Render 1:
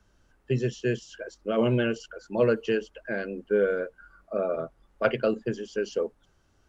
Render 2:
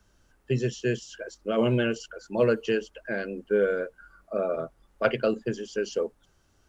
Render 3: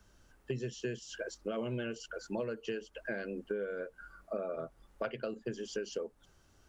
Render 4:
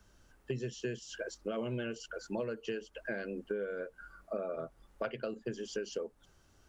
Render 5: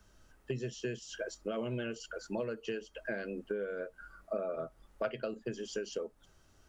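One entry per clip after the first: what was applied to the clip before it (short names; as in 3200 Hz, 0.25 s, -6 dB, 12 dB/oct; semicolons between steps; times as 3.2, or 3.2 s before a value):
high shelf 5200 Hz +7 dB
compressor 10:1, threshold -34 dBFS, peak gain reduction 17 dB
nothing audible
resonator 640 Hz, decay 0.17 s, harmonics all, mix 60%; gain +7.5 dB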